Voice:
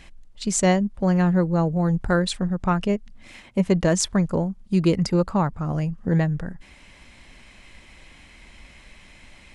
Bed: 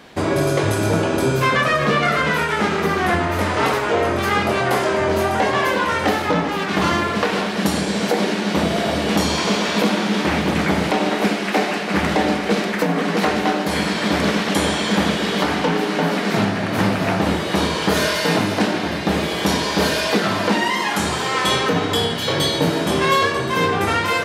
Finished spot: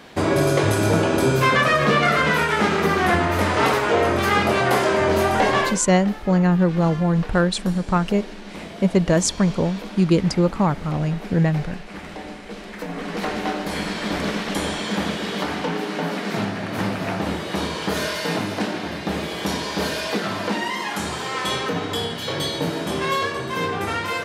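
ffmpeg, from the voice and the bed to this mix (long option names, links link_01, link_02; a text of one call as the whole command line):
ffmpeg -i stem1.wav -i stem2.wav -filter_complex "[0:a]adelay=5250,volume=2dB[link_01];[1:a]volume=11dB,afade=type=out:start_time=5.58:duration=0.22:silence=0.141254,afade=type=in:start_time=12.59:duration=0.85:silence=0.281838[link_02];[link_01][link_02]amix=inputs=2:normalize=0" out.wav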